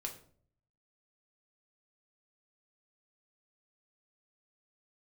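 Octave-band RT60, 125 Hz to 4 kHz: 0.95, 0.70, 0.60, 0.45, 0.40, 0.35 s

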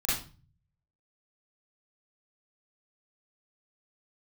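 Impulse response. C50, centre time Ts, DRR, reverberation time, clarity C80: 0.5 dB, 54 ms, -9.5 dB, 0.35 s, 8.0 dB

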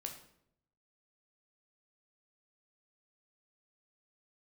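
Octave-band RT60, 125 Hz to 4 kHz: 1.0, 0.90, 0.80, 0.65, 0.60, 0.50 s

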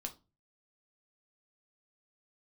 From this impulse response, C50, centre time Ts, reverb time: 15.5 dB, 8 ms, 0.30 s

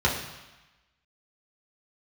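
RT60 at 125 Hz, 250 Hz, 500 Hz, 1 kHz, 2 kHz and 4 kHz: 1.0, 1.0, 1.0, 1.2, 1.2, 1.1 s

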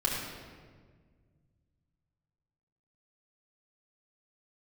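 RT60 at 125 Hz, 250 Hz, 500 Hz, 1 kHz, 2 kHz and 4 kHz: 3.2, 2.4, 1.8, 1.4, 1.3, 1.1 s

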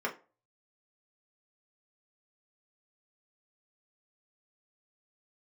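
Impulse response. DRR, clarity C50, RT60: -3.0 dB, 14.0 dB, 0.35 s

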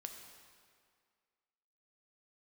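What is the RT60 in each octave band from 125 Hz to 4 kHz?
1.8, 2.0, 2.0, 2.0, 1.9, 1.7 s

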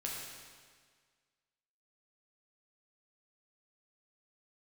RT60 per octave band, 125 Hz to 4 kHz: 1.7, 1.7, 1.7, 1.7, 1.7, 1.6 s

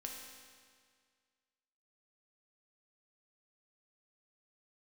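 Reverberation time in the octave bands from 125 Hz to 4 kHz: 1.9, 1.9, 1.9, 1.9, 1.9, 1.8 s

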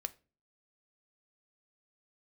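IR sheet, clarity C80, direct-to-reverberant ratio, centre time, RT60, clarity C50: 26.5 dB, 11.0 dB, 2 ms, 0.35 s, 21.0 dB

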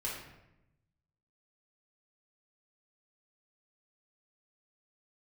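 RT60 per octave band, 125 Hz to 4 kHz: 1.5, 1.2, 1.0, 0.85, 0.80, 0.60 s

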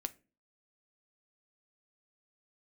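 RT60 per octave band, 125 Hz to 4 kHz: 0.45, 0.50, 0.40, 0.25, 0.30, 0.20 s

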